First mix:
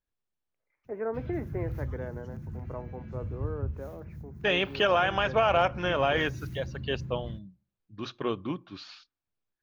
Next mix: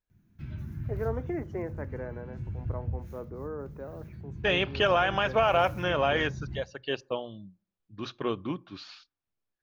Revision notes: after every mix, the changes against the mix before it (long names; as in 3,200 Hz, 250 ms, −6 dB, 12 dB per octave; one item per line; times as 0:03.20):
background: entry −0.75 s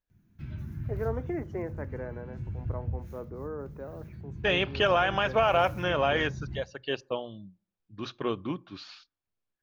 nothing changed